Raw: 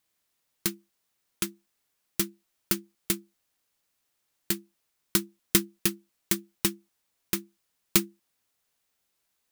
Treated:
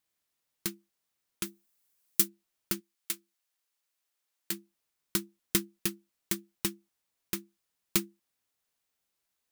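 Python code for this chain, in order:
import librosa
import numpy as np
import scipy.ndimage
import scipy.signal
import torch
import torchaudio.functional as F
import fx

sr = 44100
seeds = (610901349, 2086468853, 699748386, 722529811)

y = fx.high_shelf(x, sr, hz=fx.line((1.45, 9400.0), (2.27, 4700.0)), db=11.0, at=(1.45, 2.27), fade=0.02)
y = fx.highpass(y, sr, hz=fx.line((2.79, 1400.0), (4.51, 450.0)), slope=6, at=(2.79, 4.51), fade=0.02)
y = y * librosa.db_to_amplitude(-5.5)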